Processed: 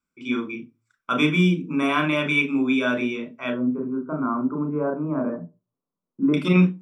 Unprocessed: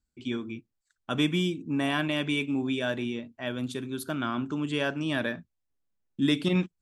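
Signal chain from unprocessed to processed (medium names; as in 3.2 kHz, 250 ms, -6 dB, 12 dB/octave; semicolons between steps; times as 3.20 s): 3.50–6.34 s: inverse Chebyshev low-pass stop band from 4.5 kHz, stop band 70 dB; reverberation RT60 0.25 s, pre-delay 28 ms, DRR 6 dB; trim -2 dB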